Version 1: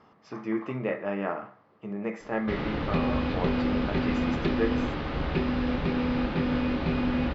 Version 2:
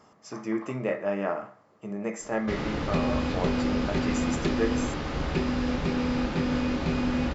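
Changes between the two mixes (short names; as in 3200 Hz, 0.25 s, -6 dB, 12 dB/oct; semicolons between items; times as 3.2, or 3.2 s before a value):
speech: add bell 610 Hz +4.5 dB 0.24 oct; master: remove LPF 4100 Hz 24 dB/oct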